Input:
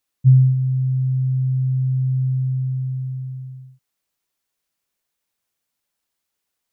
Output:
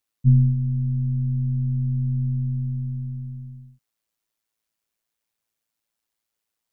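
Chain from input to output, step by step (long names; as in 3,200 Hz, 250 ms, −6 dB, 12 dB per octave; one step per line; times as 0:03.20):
amplitude modulation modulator 110 Hz, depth 40%
level −1 dB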